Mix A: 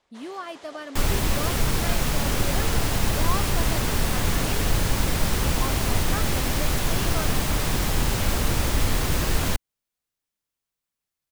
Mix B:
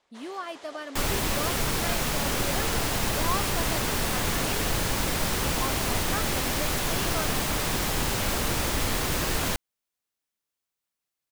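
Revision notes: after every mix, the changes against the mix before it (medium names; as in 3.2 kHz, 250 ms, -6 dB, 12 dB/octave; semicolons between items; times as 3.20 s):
master: add bass shelf 160 Hz -9 dB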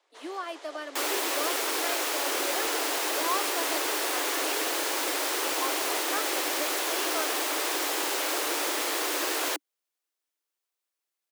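master: add steep high-pass 290 Hz 96 dB/octave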